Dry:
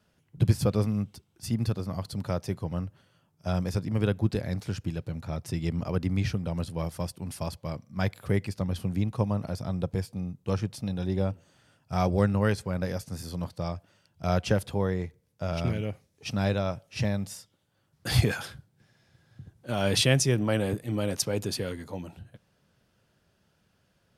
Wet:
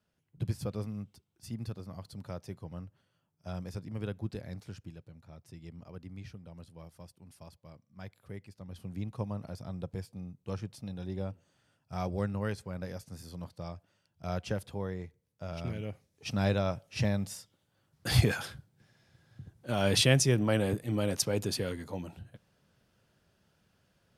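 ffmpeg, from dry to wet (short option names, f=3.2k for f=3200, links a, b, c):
-af "volume=5.5dB,afade=t=out:st=4.58:d=0.53:silence=0.446684,afade=t=in:st=8.6:d=0.48:silence=0.354813,afade=t=in:st=15.63:d=0.88:silence=0.421697"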